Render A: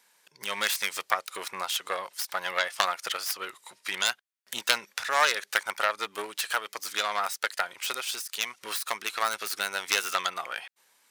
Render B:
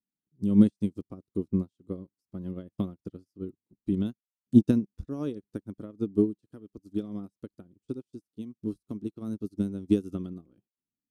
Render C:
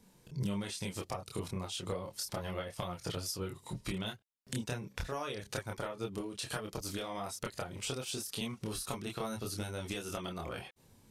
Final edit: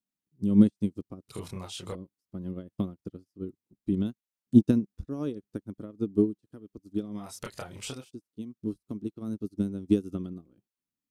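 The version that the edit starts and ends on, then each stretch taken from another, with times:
B
1.29–1.95 s: from C
7.24–7.99 s: from C, crossfade 0.24 s
not used: A

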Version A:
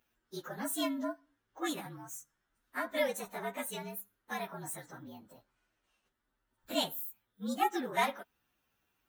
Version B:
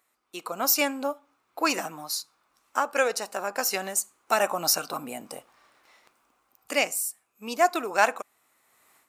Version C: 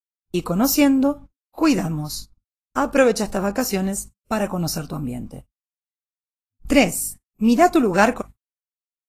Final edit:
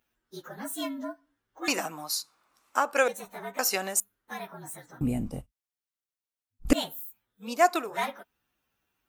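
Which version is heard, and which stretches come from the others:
A
1.68–3.08 s: from B
3.59–4.00 s: from B
5.01–6.73 s: from C
7.48–7.89 s: from B, crossfade 0.24 s

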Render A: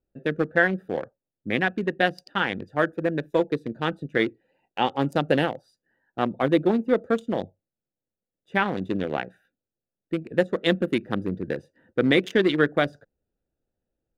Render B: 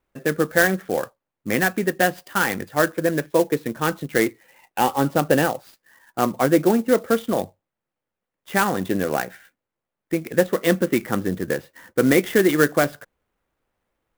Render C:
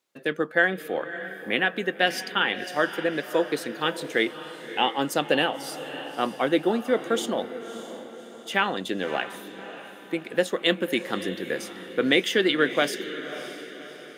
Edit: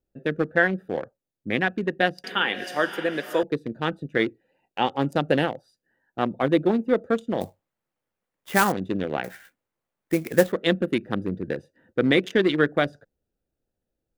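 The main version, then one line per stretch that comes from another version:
A
2.24–3.43 s: from C
7.41–8.72 s: from B
9.24–10.52 s: from B

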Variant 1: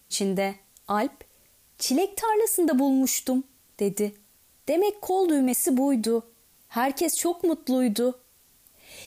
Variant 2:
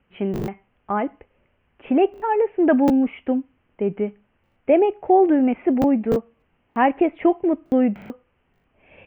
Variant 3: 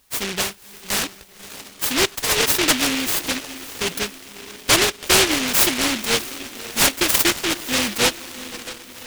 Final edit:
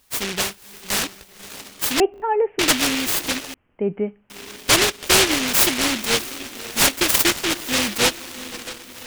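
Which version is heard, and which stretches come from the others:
3
2.00–2.59 s: from 2
3.54–4.30 s: from 2
not used: 1

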